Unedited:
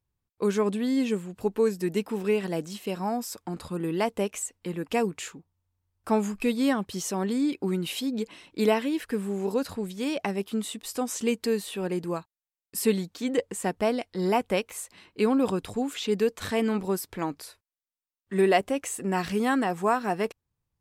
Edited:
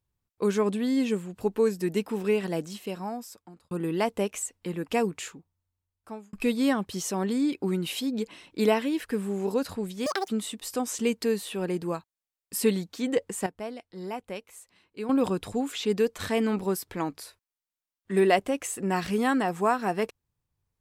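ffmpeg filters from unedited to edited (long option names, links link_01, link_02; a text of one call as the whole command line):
ffmpeg -i in.wav -filter_complex "[0:a]asplit=7[link_01][link_02][link_03][link_04][link_05][link_06][link_07];[link_01]atrim=end=3.71,asetpts=PTS-STARTPTS,afade=type=out:start_time=2.58:duration=1.13[link_08];[link_02]atrim=start=3.71:end=6.33,asetpts=PTS-STARTPTS,afade=type=in:duration=0.004:curve=hsin,afade=type=out:start_time=1.46:duration=1.16[link_09];[link_03]atrim=start=6.33:end=10.064,asetpts=PTS-STARTPTS,afade=type=in:duration=0.004:curve=hsin[link_10];[link_04]atrim=start=10.06:end=10.5,asetpts=PTS-STARTPTS,asetrate=86877,aresample=44100[link_11];[link_05]atrim=start=10.496:end=13.682[link_12];[link_06]atrim=start=13.678:end=15.312,asetpts=PTS-STARTPTS,volume=-11dB[link_13];[link_07]atrim=start=15.308[link_14];[link_08][link_09][link_10]concat=n=3:v=0:a=1[link_15];[link_15][link_11]acrossfade=duration=0.004:curve1=hsin:curve2=hsin[link_16];[link_16][link_12]acrossfade=duration=0.004:curve1=hsin:curve2=hsin[link_17];[link_17][link_13]acrossfade=duration=0.004:curve1=hsin:curve2=hsin[link_18];[link_18][link_14]acrossfade=duration=0.004:curve1=hsin:curve2=hsin" out.wav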